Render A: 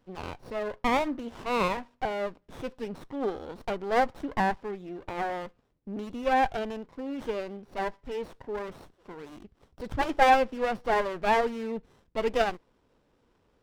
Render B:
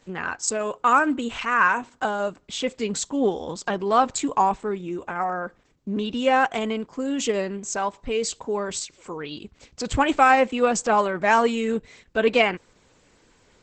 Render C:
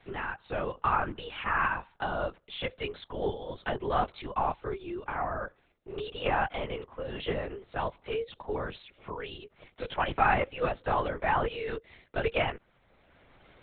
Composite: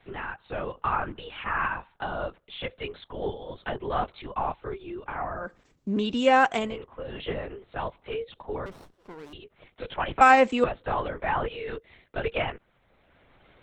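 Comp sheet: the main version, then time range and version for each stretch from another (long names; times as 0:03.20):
C
0:05.44–0:06.68: punch in from B, crossfade 0.24 s
0:08.66–0:09.33: punch in from A
0:10.21–0:10.64: punch in from B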